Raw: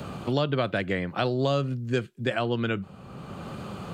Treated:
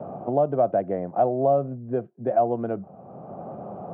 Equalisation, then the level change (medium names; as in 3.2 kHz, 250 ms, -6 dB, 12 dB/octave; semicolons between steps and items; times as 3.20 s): high-pass 140 Hz 12 dB/octave; resonant low-pass 700 Hz, resonance Q 5.1; distance through air 200 m; -1.5 dB